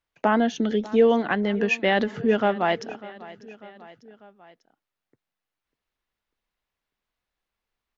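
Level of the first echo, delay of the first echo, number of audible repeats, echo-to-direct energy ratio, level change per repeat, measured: -19.0 dB, 0.596 s, 3, -17.5 dB, -4.5 dB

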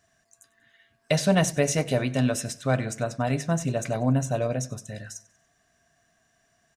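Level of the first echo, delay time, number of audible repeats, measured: -21.0 dB, 95 ms, 3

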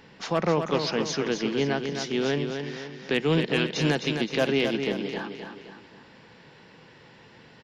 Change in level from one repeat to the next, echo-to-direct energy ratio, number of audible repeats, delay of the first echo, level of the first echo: -6.5 dB, -5.5 dB, 4, 0.26 s, -6.5 dB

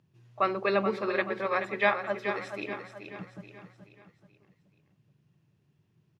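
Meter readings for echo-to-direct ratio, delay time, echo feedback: -7.5 dB, 0.429 s, 45%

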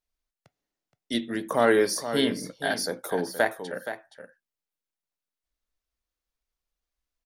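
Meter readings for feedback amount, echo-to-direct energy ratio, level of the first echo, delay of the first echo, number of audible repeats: no steady repeat, -10.5 dB, -10.5 dB, 0.472 s, 1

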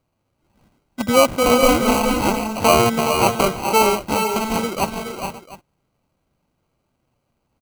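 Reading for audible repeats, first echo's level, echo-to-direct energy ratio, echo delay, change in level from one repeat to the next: 5, -19.5 dB, -4.5 dB, 0.363 s, no steady repeat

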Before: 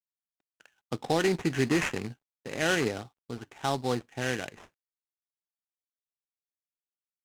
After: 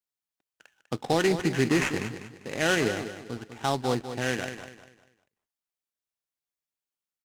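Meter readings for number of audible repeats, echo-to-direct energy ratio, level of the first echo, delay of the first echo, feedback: 3, -10.0 dB, -10.5 dB, 0.198 s, 33%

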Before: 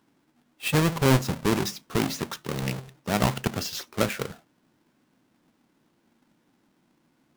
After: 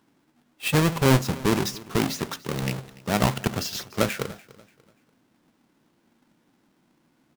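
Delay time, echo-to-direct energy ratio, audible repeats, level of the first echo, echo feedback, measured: 0.291 s, -20.5 dB, 2, -21.0 dB, 34%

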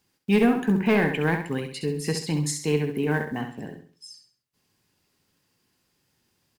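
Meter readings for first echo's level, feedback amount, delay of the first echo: -7.5 dB, 35%, 67 ms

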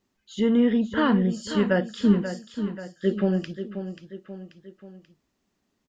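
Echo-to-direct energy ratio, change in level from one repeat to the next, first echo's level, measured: -9.0 dB, -6.0 dB, -10.0 dB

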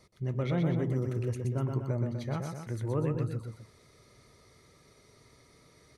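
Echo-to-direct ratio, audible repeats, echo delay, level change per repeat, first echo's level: -3.0 dB, 2, 0.123 s, -4.5 dB, -4.5 dB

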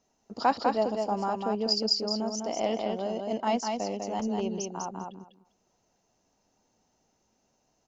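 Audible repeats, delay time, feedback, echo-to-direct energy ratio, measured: 2, 0.199 s, 16%, -4.0 dB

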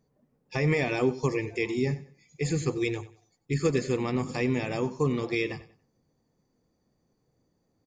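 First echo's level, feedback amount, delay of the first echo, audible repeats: -16.5 dB, 27%, 94 ms, 2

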